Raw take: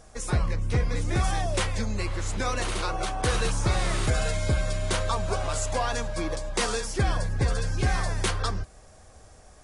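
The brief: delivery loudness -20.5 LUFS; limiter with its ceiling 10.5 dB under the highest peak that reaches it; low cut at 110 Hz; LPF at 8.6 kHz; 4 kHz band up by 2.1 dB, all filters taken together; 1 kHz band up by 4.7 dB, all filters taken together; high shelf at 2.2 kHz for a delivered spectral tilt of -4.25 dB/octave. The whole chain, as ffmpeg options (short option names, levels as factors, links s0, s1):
-af "highpass=110,lowpass=8600,equalizer=f=1000:t=o:g=7,highshelf=f=2200:g=-5.5,equalizer=f=4000:t=o:g=7.5,volume=3.35,alimiter=limit=0.299:level=0:latency=1"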